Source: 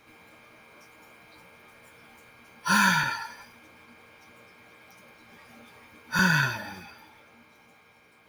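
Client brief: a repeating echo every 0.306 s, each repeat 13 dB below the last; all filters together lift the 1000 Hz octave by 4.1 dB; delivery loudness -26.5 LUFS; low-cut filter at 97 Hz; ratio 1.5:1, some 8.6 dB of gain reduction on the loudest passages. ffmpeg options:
-af "highpass=97,equalizer=f=1k:t=o:g=5,acompressor=threshold=-40dB:ratio=1.5,aecho=1:1:306|612|918:0.224|0.0493|0.0108,volume=5dB"

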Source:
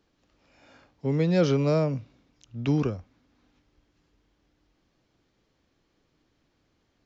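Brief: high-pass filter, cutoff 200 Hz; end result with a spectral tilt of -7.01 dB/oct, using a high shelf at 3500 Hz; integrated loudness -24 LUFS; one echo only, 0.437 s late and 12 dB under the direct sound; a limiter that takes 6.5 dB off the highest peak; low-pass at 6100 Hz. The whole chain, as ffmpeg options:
-af "highpass=200,lowpass=6.1k,highshelf=f=3.5k:g=-5.5,alimiter=limit=-19.5dB:level=0:latency=1,aecho=1:1:437:0.251,volume=7dB"

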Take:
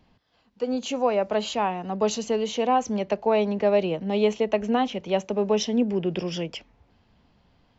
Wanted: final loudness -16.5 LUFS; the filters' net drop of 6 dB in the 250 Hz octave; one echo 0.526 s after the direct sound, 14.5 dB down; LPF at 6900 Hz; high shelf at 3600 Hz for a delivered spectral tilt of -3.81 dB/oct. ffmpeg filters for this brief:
-af "lowpass=6.9k,equalizer=f=250:t=o:g=-7.5,highshelf=f=3.6k:g=4.5,aecho=1:1:526:0.188,volume=10dB"

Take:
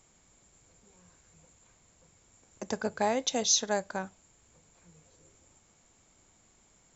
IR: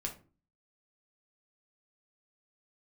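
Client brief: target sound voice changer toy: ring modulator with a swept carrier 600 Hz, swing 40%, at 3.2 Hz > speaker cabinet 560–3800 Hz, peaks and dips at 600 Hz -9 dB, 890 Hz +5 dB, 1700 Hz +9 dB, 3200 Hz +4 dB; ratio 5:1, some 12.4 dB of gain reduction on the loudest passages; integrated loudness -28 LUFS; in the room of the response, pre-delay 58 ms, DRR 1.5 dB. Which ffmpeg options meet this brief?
-filter_complex "[0:a]acompressor=threshold=-35dB:ratio=5,asplit=2[a][b];[1:a]atrim=start_sample=2205,adelay=58[c];[b][c]afir=irnorm=-1:irlink=0,volume=-1.5dB[d];[a][d]amix=inputs=2:normalize=0,aeval=exprs='val(0)*sin(2*PI*600*n/s+600*0.4/3.2*sin(2*PI*3.2*n/s))':c=same,highpass=560,equalizer=f=600:t=q:w=4:g=-9,equalizer=f=890:t=q:w=4:g=5,equalizer=f=1.7k:t=q:w=4:g=9,equalizer=f=3.2k:t=q:w=4:g=4,lowpass=f=3.8k:w=0.5412,lowpass=f=3.8k:w=1.3066,volume=11.5dB"

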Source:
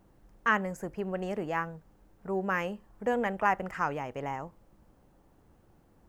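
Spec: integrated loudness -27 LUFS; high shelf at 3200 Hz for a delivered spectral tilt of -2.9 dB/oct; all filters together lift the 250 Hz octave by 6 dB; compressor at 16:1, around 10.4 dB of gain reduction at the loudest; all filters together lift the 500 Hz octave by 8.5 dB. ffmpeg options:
-af "equalizer=f=250:t=o:g=6,equalizer=f=500:t=o:g=8.5,highshelf=f=3.2k:g=-4.5,acompressor=threshold=-25dB:ratio=16,volume=5dB"

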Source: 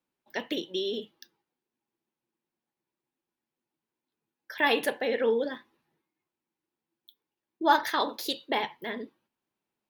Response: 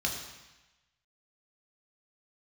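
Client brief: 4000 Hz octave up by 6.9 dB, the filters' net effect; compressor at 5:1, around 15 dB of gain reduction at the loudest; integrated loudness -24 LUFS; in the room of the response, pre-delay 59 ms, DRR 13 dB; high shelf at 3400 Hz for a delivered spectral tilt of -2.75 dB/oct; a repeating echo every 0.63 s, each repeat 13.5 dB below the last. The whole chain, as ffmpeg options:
-filter_complex "[0:a]highshelf=f=3.4k:g=5.5,equalizer=f=4k:t=o:g=5,acompressor=threshold=-33dB:ratio=5,aecho=1:1:630|1260:0.211|0.0444,asplit=2[a][b];[1:a]atrim=start_sample=2205,adelay=59[c];[b][c]afir=irnorm=-1:irlink=0,volume=-19.5dB[d];[a][d]amix=inputs=2:normalize=0,volume=13dB"

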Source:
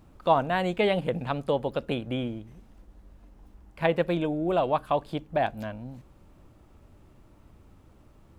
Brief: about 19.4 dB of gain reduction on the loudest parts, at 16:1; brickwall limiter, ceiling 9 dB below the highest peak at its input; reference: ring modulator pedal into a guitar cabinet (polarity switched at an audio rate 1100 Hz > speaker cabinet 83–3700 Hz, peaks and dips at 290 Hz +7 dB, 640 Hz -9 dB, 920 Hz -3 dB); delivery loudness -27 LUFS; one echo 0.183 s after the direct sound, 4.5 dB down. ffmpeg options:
-af "acompressor=threshold=-36dB:ratio=16,alimiter=level_in=9dB:limit=-24dB:level=0:latency=1,volume=-9dB,aecho=1:1:183:0.596,aeval=exprs='val(0)*sgn(sin(2*PI*1100*n/s))':c=same,highpass=83,equalizer=f=290:t=q:w=4:g=7,equalizer=f=640:t=q:w=4:g=-9,equalizer=f=920:t=q:w=4:g=-3,lowpass=f=3.7k:w=0.5412,lowpass=f=3.7k:w=1.3066,volume=17dB"

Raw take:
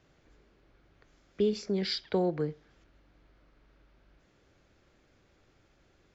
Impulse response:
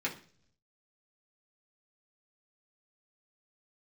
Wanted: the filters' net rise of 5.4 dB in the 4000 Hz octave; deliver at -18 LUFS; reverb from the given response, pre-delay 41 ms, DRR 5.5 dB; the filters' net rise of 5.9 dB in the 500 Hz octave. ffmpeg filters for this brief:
-filter_complex "[0:a]equalizer=f=500:t=o:g=7.5,equalizer=f=4k:t=o:g=6.5,asplit=2[a][b];[1:a]atrim=start_sample=2205,adelay=41[c];[b][c]afir=irnorm=-1:irlink=0,volume=-10.5dB[d];[a][d]amix=inputs=2:normalize=0,volume=7.5dB"

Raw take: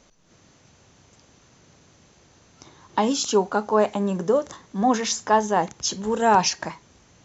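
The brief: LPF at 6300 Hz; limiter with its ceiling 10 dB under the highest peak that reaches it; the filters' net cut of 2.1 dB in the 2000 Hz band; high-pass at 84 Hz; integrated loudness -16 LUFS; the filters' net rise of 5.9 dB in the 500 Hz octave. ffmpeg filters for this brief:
-af "highpass=84,lowpass=6.3k,equalizer=f=500:t=o:g=7.5,equalizer=f=2k:t=o:g=-3.5,volume=8dB,alimiter=limit=-5dB:level=0:latency=1"

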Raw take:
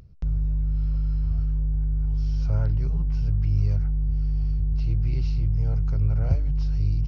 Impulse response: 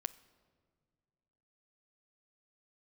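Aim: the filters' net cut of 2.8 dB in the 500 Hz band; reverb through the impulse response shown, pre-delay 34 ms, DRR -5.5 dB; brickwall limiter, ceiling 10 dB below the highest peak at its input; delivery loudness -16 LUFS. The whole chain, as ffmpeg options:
-filter_complex "[0:a]equalizer=f=500:t=o:g=-3.5,alimiter=limit=-20.5dB:level=0:latency=1,asplit=2[a][b];[1:a]atrim=start_sample=2205,adelay=34[c];[b][c]afir=irnorm=-1:irlink=0,volume=7dB[d];[a][d]amix=inputs=2:normalize=0,volume=7.5dB"

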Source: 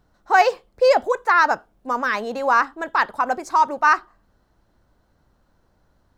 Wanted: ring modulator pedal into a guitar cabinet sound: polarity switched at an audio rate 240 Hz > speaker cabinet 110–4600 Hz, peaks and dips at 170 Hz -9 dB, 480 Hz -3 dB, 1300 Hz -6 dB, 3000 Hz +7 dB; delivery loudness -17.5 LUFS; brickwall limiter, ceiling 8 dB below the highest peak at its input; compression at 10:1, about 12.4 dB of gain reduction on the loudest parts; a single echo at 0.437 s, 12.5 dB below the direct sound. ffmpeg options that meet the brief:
-af "acompressor=threshold=-23dB:ratio=10,alimiter=limit=-20.5dB:level=0:latency=1,aecho=1:1:437:0.237,aeval=exprs='val(0)*sgn(sin(2*PI*240*n/s))':c=same,highpass=110,equalizer=f=170:t=q:w=4:g=-9,equalizer=f=480:t=q:w=4:g=-3,equalizer=f=1.3k:t=q:w=4:g=-6,equalizer=f=3k:t=q:w=4:g=7,lowpass=f=4.6k:w=0.5412,lowpass=f=4.6k:w=1.3066,volume=14.5dB"

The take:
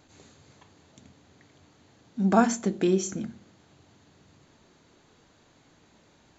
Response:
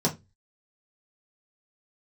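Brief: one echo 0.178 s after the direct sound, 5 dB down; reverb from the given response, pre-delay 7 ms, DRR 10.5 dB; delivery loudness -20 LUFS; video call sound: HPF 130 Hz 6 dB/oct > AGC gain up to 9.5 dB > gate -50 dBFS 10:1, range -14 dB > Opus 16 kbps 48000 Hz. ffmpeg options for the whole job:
-filter_complex "[0:a]aecho=1:1:178:0.562,asplit=2[a][b];[1:a]atrim=start_sample=2205,adelay=7[c];[b][c]afir=irnorm=-1:irlink=0,volume=-21dB[d];[a][d]amix=inputs=2:normalize=0,highpass=f=130:p=1,dynaudnorm=m=9.5dB,agate=range=-14dB:threshold=-50dB:ratio=10,volume=5.5dB" -ar 48000 -c:a libopus -b:a 16k

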